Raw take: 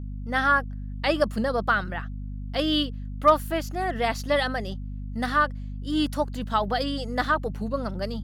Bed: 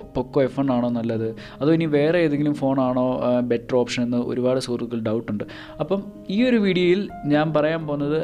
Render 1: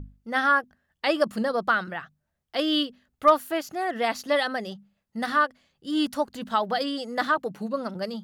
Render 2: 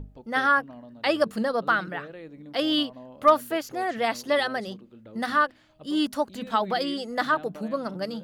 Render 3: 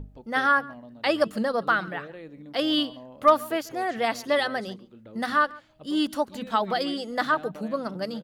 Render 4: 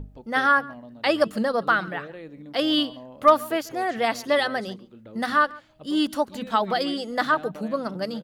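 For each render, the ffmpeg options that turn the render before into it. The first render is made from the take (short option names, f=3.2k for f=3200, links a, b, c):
-af "bandreject=f=50:t=h:w=6,bandreject=f=100:t=h:w=6,bandreject=f=150:t=h:w=6,bandreject=f=200:t=h:w=6,bandreject=f=250:t=h:w=6"
-filter_complex "[1:a]volume=-23.5dB[a];[0:a][a]amix=inputs=2:normalize=0"
-filter_complex "[0:a]asplit=2[a][b];[b]adelay=139.9,volume=-22dB,highshelf=f=4k:g=-3.15[c];[a][c]amix=inputs=2:normalize=0"
-af "volume=2dB"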